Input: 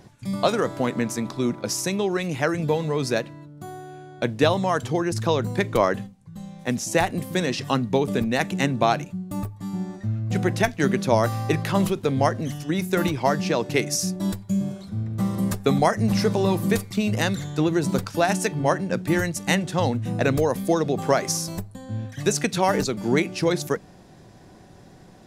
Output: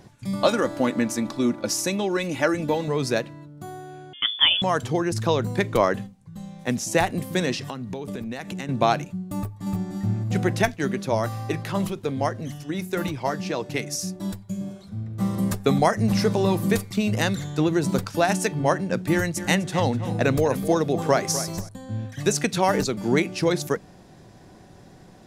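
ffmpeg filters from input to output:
-filter_complex "[0:a]asettb=1/sr,asplit=3[a][b][c];[a]atrim=end=0.414[d];[b]atrim=start=0.41:end=2.88,asetpts=PTS-STARTPTS,afade=t=in:d=0.004:c=qsin,afade=t=out:st=2.466:d=0.004:c=qsin,aecho=1:1:3.5:0.53,atrim=end_sample=108927[e];[c]atrim=start=2.876[f];[d][e]acrossfade=d=0.004:c1=hsin:c2=qsin[g];[g][f]acrossfade=d=0.004:c1=qsin:c2=hsin,asettb=1/sr,asplit=3[h][i][j];[h]atrim=end=4.134[k];[i]atrim=start=4.13:end=4.62,asetpts=PTS-STARTPTS,afade=t=in:d=0.004:c=qsin,afade=t=out:st=0.486:d=0.004:c=qsin,lowpass=f=3.1k:t=q:w=0.5098,lowpass=f=3.1k:t=q:w=0.6013,lowpass=f=3.1k:t=q:w=0.9,lowpass=f=3.1k:t=q:w=2.563,afreqshift=-3600[l];[j]atrim=start=4.616[m];[k][l]acrossfade=d=0.004:c1=hsin:c2=qsin[n];[n][m]acrossfade=d=0.004:c1=qsin:c2=hsin,asettb=1/sr,asplit=3[o][p][q];[o]atrim=end=7.574[r];[p]atrim=start=7.57:end=8.69,asetpts=PTS-STARTPTS,afade=t=in:d=0.004:c=qsin,afade=t=out:st=1.116:d=0.004:c=qsin,acompressor=threshold=-28dB:ratio=10:attack=3.2:release=140:knee=1:detection=peak[s];[q]atrim=start=8.686[t];[r][s]acrossfade=d=0.004:c1=hsin:c2=qsin[u];[u][t]acrossfade=d=0.004:c1=qsin:c2=hsin,asplit=2[v][w];[w]afade=t=in:st=9.36:d=0.01,afade=t=out:st=9.93:d=0.01,aecho=0:1:300|600|900|1200:0.749894|0.187474|0.0468684|0.0117171[x];[v][x]amix=inputs=2:normalize=0,asplit=3[y][z][aa];[y]afade=t=out:st=10.74:d=0.02[ab];[z]flanger=delay=0.9:depth=2.8:regen=-73:speed=1.6:shape=triangular,afade=t=in:st=10.74:d=0.02,afade=t=out:st=15.2:d=0.02[ac];[aa]afade=t=in:st=15.2:d=0.02[ad];[ab][ac][ad]amix=inputs=3:normalize=0,asettb=1/sr,asplit=3[ae][af][ag];[ae]atrim=end=19.124[ah];[af]atrim=start=19.12:end=21.69,asetpts=PTS-STARTPTS,afade=t=in:d=0.004:c=qsin,afade=t=out:st=2.566:d=0.004:c=qsin,asplit=2[ai][aj];[aj]adelay=251,lowpass=f=4.9k:p=1,volume=-12.5dB,asplit=2[ak][al];[al]adelay=251,lowpass=f=4.9k:p=1,volume=0.17[am];[ai][ak][am]amix=inputs=3:normalize=0,atrim=end_sample=113337[an];[ag]atrim=start=21.686[ao];[ah][an]acrossfade=d=0.004:c1=hsin:c2=qsin[ap];[ap][ao]acrossfade=d=0.004:c1=qsin:c2=hsin"

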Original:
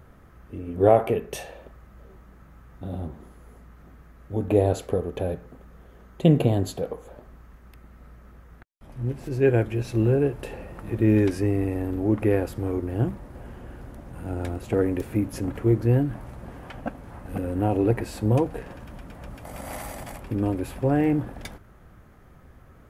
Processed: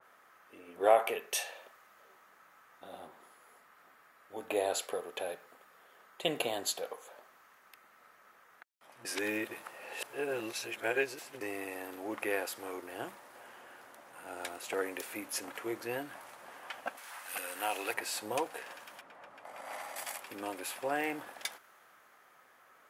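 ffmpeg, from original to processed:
-filter_complex "[0:a]asettb=1/sr,asplit=3[a][b][c];[a]atrim=end=2.994[d];[b]atrim=start=2.99:end=6.39,asetpts=PTS-STARTPTS,afade=t=in:d=0.004:c=qsin,afade=t=out:st=3.396:d=0.004:c=qsin,bandreject=f=6.2k:w=12[e];[c]atrim=start=6.386[f];[d][e]acrossfade=d=0.004:c1=hsin:c2=qsin[g];[g][f]acrossfade=d=0.004:c1=qsin:c2=hsin,asettb=1/sr,asplit=3[h][i][j];[h]atrim=end=16.974[k];[i]atrim=start=16.97:end=17.94,asetpts=PTS-STARTPTS,afade=t=in:d=0.004:c=qsin,afade=t=out:st=0.966:d=0.004:c=qsin,tiltshelf=f=890:g=-9[l];[j]atrim=start=17.936[m];[k][l]acrossfade=d=0.004:c1=hsin:c2=qsin[n];[n][m]acrossfade=d=0.004:c1=qsin:c2=hsin,asettb=1/sr,asplit=3[o][p][q];[o]atrim=end=19.014[r];[p]atrim=start=19.01:end=19.96,asetpts=PTS-STARTPTS,afade=t=in:d=0.004:c=qsin,afade=t=out:st=0.946:d=0.004:c=qsin,lowpass=f=1.3k:p=1[s];[q]atrim=start=19.956[t];[r][s]acrossfade=d=0.004:c1=hsin:c2=qsin[u];[u][t]acrossfade=d=0.004:c1=qsin:c2=hsin,asplit=3[v][w][x];[v]atrim=end=9.052[y];[w]atrim=start=9.048:end=11.412,asetpts=PTS-STARTPTS,areverse[z];[x]atrim=start=11.408[aa];[y][z]acrossfade=d=0.004:c1=hsin:c2=hsin[ab];[ab][aa]acrossfade=d=0.004:c1=hsin:c2=hsin,highpass=890,adynamicequalizer=threshold=0.00251:dfrequency=2500:dqfactor=0.7:tfrequency=2500:tqfactor=0.7:attack=5:release=100:ratio=0.375:range=2.5:mode=boostabove:tftype=highshelf"

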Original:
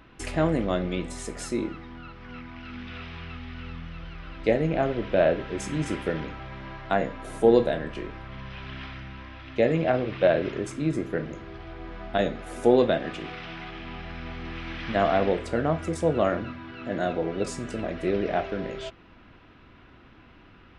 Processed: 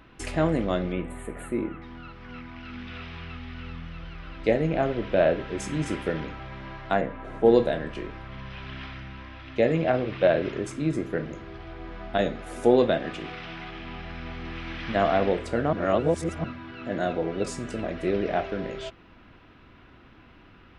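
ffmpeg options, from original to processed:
-filter_complex "[0:a]asettb=1/sr,asplit=3[a][b][c];[a]atrim=end=0.924[d];[b]atrim=start=0.92:end=1.82,asetpts=PTS-STARTPTS,afade=t=in:d=0.004:c=qsin,afade=t=out:st=0.896:d=0.004:c=qsin,asuperstop=centerf=5400:order=4:qfactor=0.69[e];[c]atrim=start=1.816[f];[d][e]acrossfade=d=0.004:c1=hsin:c2=qsin[g];[g][f]acrossfade=d=0.004:c1=qsin:c2=hsin,asplit=3[h][i][j];[h]afade=t=out:st=7:d=0.02[k];[i]lowpass=2.4k,afade=t=in:st=7:d=0.02,afade=t=out:st=7.44:d=0.02[l];[j]afade=t=in:st=7.44:d=0.02[m];[k][l][m]amix=inputs=3:normalize=0,asplit=3[n][o][p];[n]atrim=end=15.732[q];[o]atrim=start=15.728:end=16.442,asetpts=PTS-STARTPTS,areverse[r];[p]atrim=start=16.438[s];[q][r]acrossfade=d=0.004:c1=hsin:c2=hsin[t];[t][s]acrossfade=d=0.004:c1=hsin:c2=hsin"

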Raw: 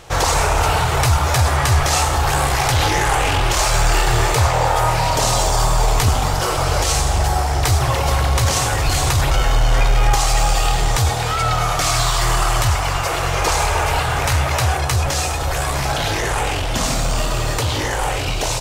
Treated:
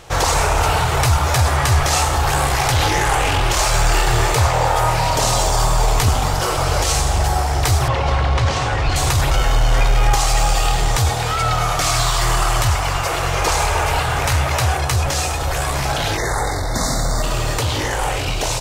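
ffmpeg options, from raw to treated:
-filter_complex "[0:a]asettb=1/sr,asplit=3[a][b][c];[a]atrim=end=7.884[d];[b]atrim=start=7.88:end=8.96,asetpts=PTS-STARTPTS,afade=t=in:d=0.004:c=qsin,afade=t=out:st=1.076:d=0.004:c=qsin,lowpass=3.8k[e];[c]atrim=start=8.956[f];[d][e]acrossfade=d=0.004:c1=hsin:c2=qsin[g];[g][f]acrossfade=d=0.004:c1=qsin:c2=hsin,asplit=3[h][i][j];[h]afade=t=out:st=16.16:d=0.02[k];[i]asuperstop=centerf=2800:order=20:qfactor=2,afade=t=in:st=16.16:d=0.02,afade=t=out:st=17.22:d=0.02[l];[j]afade=t=in:st=17.22:d=0.02[m];[k][l][m]amix=inputs=3:normalize=0"

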